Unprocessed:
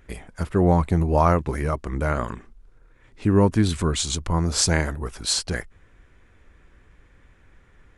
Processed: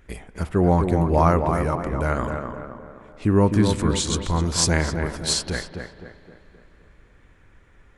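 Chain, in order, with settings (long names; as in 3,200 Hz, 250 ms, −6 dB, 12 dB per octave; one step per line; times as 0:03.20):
tape delay 259 ms, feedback 52%, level −4 dB, low-pass 1,600 Hz
spring reverb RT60 3 s, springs 38 ms, chirp 50 ms, DRR 16.5 dB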